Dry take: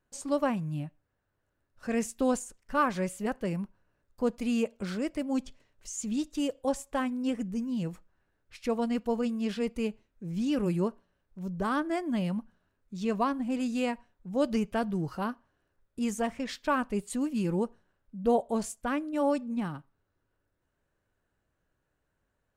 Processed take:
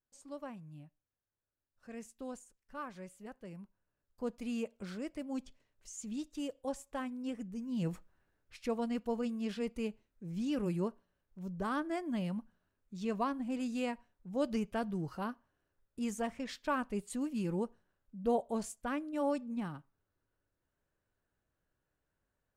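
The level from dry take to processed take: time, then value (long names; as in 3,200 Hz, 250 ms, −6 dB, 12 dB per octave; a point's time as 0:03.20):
0:03.42 −17 dB
0:04.32 −9 dB
0:07.62 −9 dB
0:07.91 +1 dB
0:08.78 −6 dB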